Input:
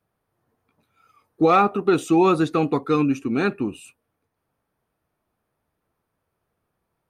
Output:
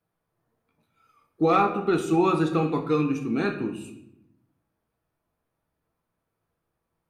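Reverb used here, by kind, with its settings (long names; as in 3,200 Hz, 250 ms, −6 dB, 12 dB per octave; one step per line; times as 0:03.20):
rectangular room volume 210 cubic metres, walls mixed, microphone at 0.67 metres
level −5.5 dB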